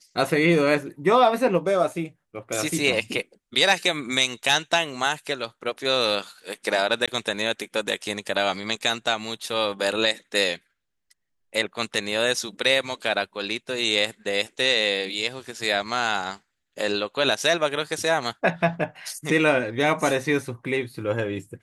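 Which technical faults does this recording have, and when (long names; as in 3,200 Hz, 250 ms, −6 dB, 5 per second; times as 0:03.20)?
0:07.06–0:07.08: drop-out 16 ms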